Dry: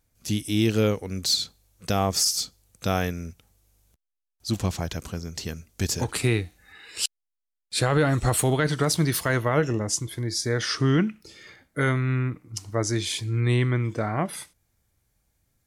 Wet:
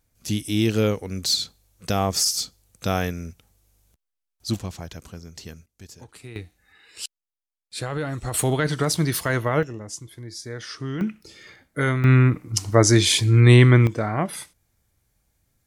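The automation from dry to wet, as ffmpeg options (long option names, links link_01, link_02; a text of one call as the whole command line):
ffmpeg -i in.wav -af "asetnsamples=nb_out_samples=441:pad=0,asendcmd='4.59 volume volume -6.5dB;5.66 volume volume -18dB;6.36 volume volume -7dB;8.34 volume volume 0.5dB;9.63 volume volume -9dB;11.01 volume volume 1dB;12.04 volume volume 10dB;13.87 volume volume 2dB',volume=1dB" out.wav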